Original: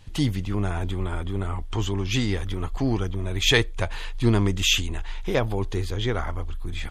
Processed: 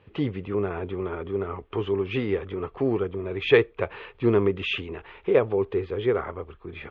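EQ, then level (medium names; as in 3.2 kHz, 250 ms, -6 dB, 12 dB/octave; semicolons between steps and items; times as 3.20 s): cabinet simulation 110–2800 Hz, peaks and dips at 520 Hz +6 dB, 1.2 kHz +6 dB, 2.5 kHz +4 dB; peaking EQ 410 Hz +13 dB 0.44 oct; -4.5 dB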